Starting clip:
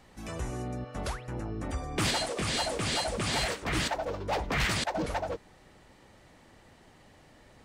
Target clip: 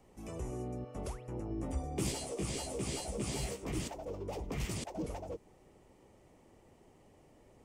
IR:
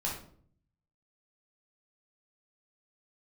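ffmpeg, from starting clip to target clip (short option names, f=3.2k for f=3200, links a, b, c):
-filter_complex "[0:a]asettb=1/sr,asplit=3[a][b][c];[a]atrim=end=1.494[d];[b]atrim=start=1.49:end=3.72,asetpts=PTS-STARTPTS,afade=t=in:d=0.004:c=qsin,afade=t=out:st=2.226:d=0.004:c=qsin,asplit=2[e][f];[f]adelay=15,volume=-2dB[g];[e][g]amix=inputs=2:normalize=0,atrim=end_sample=98343[h];[c]atrim=start=3.716[i];[d][h]acrossfade=d=0.004:c1=hsin:c2=qsin[j];[j][i]acrossfade=d=0.004:c1=qsin:c2=hsin,acrossover=split=350|3000[k][l][m];[l]acompressor=threshold=-38dB:ratio=6[n];[k][n][m]amix=inputs=3:normalize=0,equalizer=f=400:t=o:w=0.67:g=6,equalizer=f=1.6k:t=o:w=0.67:g=-11,equalizer=f=4k:t=o:w=0.67:g=-11,volume=-5.5dB"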